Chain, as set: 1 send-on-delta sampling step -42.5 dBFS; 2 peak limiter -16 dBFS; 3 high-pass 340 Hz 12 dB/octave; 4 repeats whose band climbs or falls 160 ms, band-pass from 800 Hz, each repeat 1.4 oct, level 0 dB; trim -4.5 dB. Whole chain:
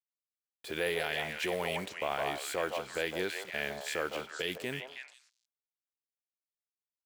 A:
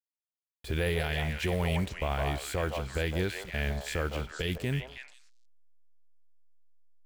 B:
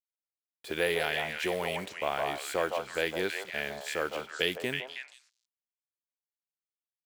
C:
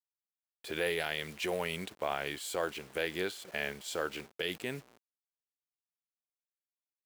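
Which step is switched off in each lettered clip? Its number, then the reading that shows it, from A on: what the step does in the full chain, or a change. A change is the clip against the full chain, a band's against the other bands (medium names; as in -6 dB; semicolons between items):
3, 125 Hz band +17.5 dB; 2, crest factor change +2.5 dB; 4, echo-to-direct -3.0 dB to none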